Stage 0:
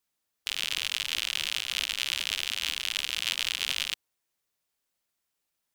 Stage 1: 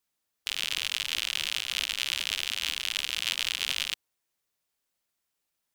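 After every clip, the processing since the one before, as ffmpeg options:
ffmpeg -i in.wav -af anull out.wav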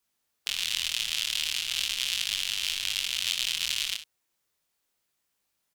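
ffmpeg -i in.wav -filter_complex "[0:a]acrossover=split=180|3000[link_01][link_02][link_03];[link_02]acompressor=threshold=-39dB:ratio=6[link_04];[link_01][link_04][link_03]amix=inputs=3:normalize=0,flanger=delay=20:depth=6.6:speed=0.38,aecho=1:1:62|74:0.237|0.15,volume=6.5dB" out.wav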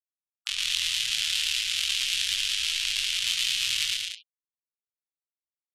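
ffmpeg -i in.wav -filter_complex "[0:a]asplit=2[link_01][link_02];[link_02]adelay=17,volume=-10dB[link_03];[link_01][link_03]amix=inputs=2:normalize=0,afftfilt=real='re*gte(hypot(re,im),0.00891)':imag='im*gte(hypot(re,im),0.00891)':win_size=1024:overlap=0.75,aecho=1:1:113.7|183.7:0.708|0.501" out.wav

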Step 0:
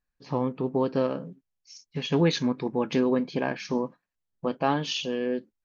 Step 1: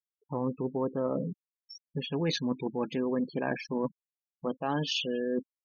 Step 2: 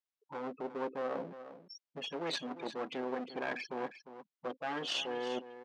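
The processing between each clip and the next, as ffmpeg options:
ffmpeg -i in.wav -af "afftfilt=real='re*gte(hypot(re,im),0.0251)':imag='im*gte(hypot(re,im),0.0251)':win_size=1024:overlap=0.75,areverse,acompressor=threshold=-35dB:ratio=5,areverse,volume=6.5dB" out.wav
ffmpeg -i in.wav -af "aeval=exprs='clip(val(0),-1,0.01)':channel_layout=same,highpass=370,lowpass=5300,aecho=1:1:352:0.237" out.wav

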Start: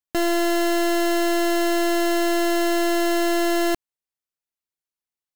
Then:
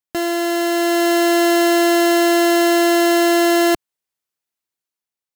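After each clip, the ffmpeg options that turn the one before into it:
ffmpeg -i in.wav -af "dynaudnorm=framelen=360:gausssize=5:maxgain=6dB,highpass=frequency=88:poles=1,volume=1dB" out.wav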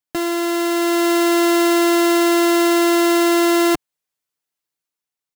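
ffmpeg -i in.wav -af "aecho=1:1:6.7:0.53" out.wav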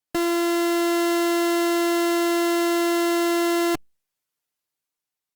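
ffmpeg -i in.wav -af "volume=19.5dB,asoftclip=hard,volume=-19.5dB" -ar 48000 -c:a libopus -b:a 48k out.opus

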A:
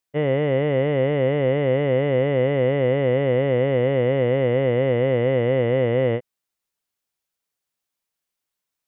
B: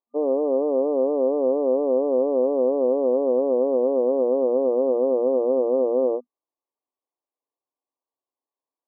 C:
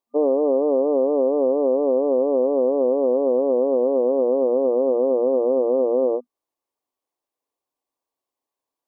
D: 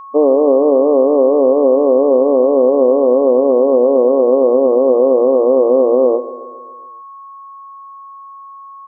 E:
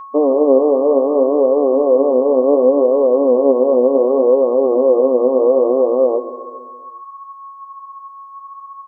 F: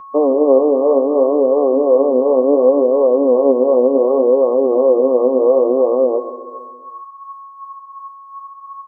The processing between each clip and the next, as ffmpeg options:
ffmpeg -i in.wav -af "afftfilt=real='re*between(b*sr/4096,240,1200)':imag='im*between(b*sr/4096,240,1200)':win_size=4096:overlap=0.75" out.wav
ffmpeg -i in.wav -af "alimiter=limit=-16.5dB:level=0:latency=1:release=337,volume=5.5dB" out.wav
ffmpeg -i in.wav -af "aeval=exprs='val(0)+0.0112*sin(2*PI*1100*n/s)':channel_layout=same,aecho=1:1:137|274|411|548|685|822:0.168|0.0974|0.0565|0.0328|0.019|0.011,volume=8dB" out.wav
ffmpeg -i in.wav -filter_complex "[0:a]asplit=2[link_01][link_02];[link_02]alimiter=limit=-8.5dB:level=0:latency=1:release=362,volume=2dB[link_03];[link_01][link_03]amix=inputs=2:normalize=0,flanger=delay=9.2:depth=7:regen=47:speed=0.67:shape=sinusoidal,volume=-2.5dB" out.wav
ffmpeg -i in.wav -filter_complex "[0:a]acrossover=split=430[link_01][link_02];[link_01]aeval=exprs='val(0)*(1-0.5/2+0.5/2*cos(2*PI*2.8*n/s))':channel_layout=same[link_03];[link_02]aeval=exprs='val(0)*(1-0.5/2-0.5/2*cos(2*PI*2.8*n/s))':channel_layout=same[link_04];[link_03][link_04]amix=inputs=2:normalize=0,volume=2.5dB" out.wav

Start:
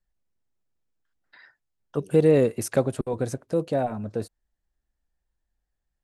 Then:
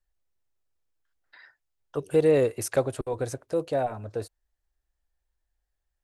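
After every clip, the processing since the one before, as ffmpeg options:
ffmpeg -i in.wav -af "equalizer=frequency=200:width=1.7:gain=-13.5" out.wav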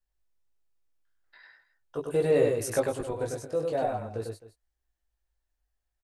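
ffmpeg -i in.wav -filter_complex "[0:a]flanger=delay=17.5:depth=2.2:speed=0.44,asplit=2[link_01][link_02];[link_02]aecho=0:1:99|262:0.668|0.141[link_03];[link_01][link_03]amix=inputs=2:normalize=0" out.wav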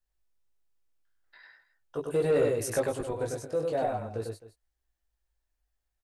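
ffmpeg -i in.wav -af "asoftclip=type=tanh:threshold=-17dB" out.wav

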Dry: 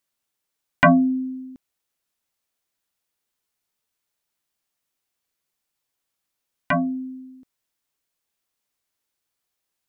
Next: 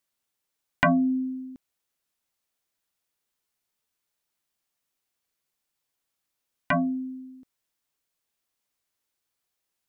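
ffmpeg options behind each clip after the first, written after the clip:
ffmpeg -i in.wav -af "acompressor=threshold=-19dB:ratio=2.5,volume=-1.5dB" out.wav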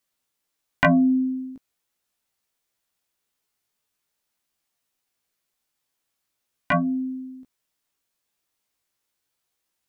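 ffmpeg -i in.wav -af "flanger=delay=15.5:depth=3.4:speed=0.41,volume=6dB" out.wav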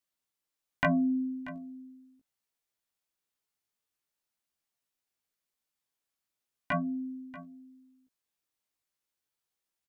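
ffmpeg -i in.wav -af "aecho=1:1:636:0.141,volume=-9dB" out.wav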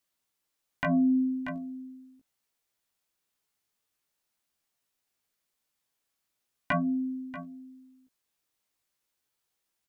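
ffmpeg -i in.wav -af "alimiter=level_in=1dB:limit=-24dB:level=0:latency=1:release=167,volume=-1dB,volume=5.5dB" out.wav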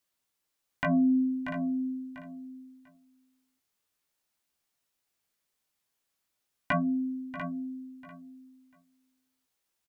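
ffmpeg -i in.wav -af "aecho=1:1:694|1388:0.299|0.0537" out.wav

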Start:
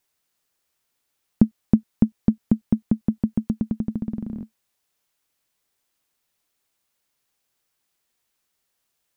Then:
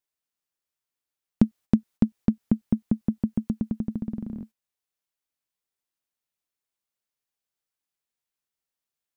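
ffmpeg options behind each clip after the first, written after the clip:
ffmpeg -i in.wav -af "agate=range=-11dB:threshold=-42dB:ratio=16:detection=peak,volume=-3dB" out.wav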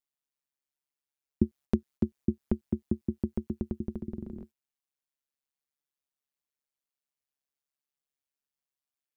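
ffmpeg -i in.wav -af "tremolo=f=140:d=0.947,volume=-2dB" out.wav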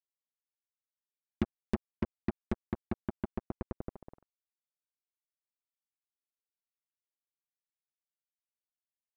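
ffmpeg -i in.wav -af "acrusher=bits=3:mix=0:aa=0.5,volume=-6dB" out.wav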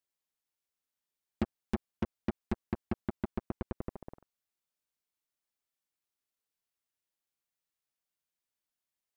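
ffmpeg -i in.wav -af "asoftclip=type=tanh:threshold=-26dB,volume=4.5dB" out.wav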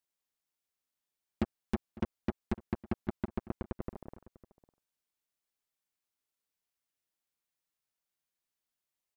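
ffmpeg -i in.wav -filter_complex "[0:a]asplit=2[link_01][link_02];[link_02]adelay=553.9,volume=-19dB,highshelf=frequency=4000:gain=-12.5[link_03];[link_01][link_03]amix=inputs=2:normalize=0" out.wav

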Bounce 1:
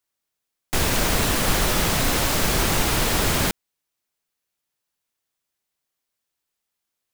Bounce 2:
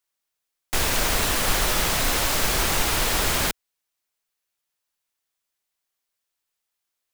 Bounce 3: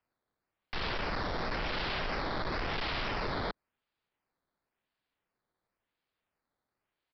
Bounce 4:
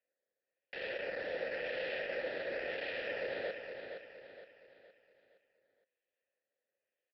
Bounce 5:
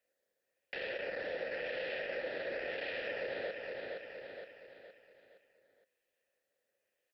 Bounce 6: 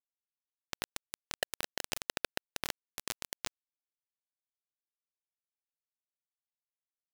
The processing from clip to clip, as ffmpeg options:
ffmpeg -i in.wav -af "equalizer=frequency=160:width_type=o:width=2.8:gain=-7.5" out.wav
ffmpeg -i in.wav -af "acrusher=samples=11:mix=1:aa=0.000001:lfo=1:lforange=11:lforate=0.95,aresample=11025,volume=26dB,asoftclip=hard,volume=-26dB,aresample=44100,volume=-6dB" out.wav
ffmpeg -i in.wav -filter_complex "[0:a]asplit=3[link_01][link_02][link_03];[link_01]bandpass=frequency=530:width_type=q:width=8,volume=0dB[link_04];[link_02]bandpass=frequency=1840:width_type=q:width=8,volume=-6dB[link_05];[link_03]bandpass=frequency=2480:width_type=q:width=8,volume=-9dB[link_06];[link_04][link_05][link_06]amix=inputs=3:normalize=0,aecho=1:1:466|932|1398|1864|2330:0.447|0.183|0.0751|0.0308|0.0126,volume=7dB" out.wav
ffmpeg -i in.wav -af "acompressor=threshold=-47dB:ratio=2,volume=6dB" out.wav
ffmpeg -i in.wav -af "acrusher=bits=4:mix=0:aa=0.000001,volume=9dB" out.wav

